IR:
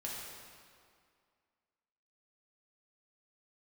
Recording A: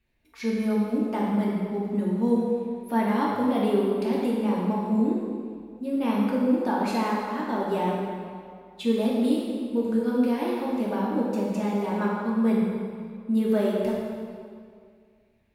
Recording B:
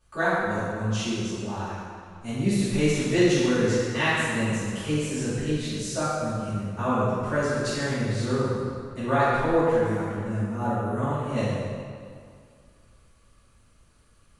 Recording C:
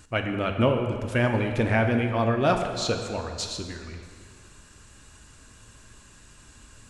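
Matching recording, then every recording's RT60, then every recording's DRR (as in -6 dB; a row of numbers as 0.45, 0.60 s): A; 2.2, 2.2, 2.1 s; -5.0, -14.5, 4.0 dB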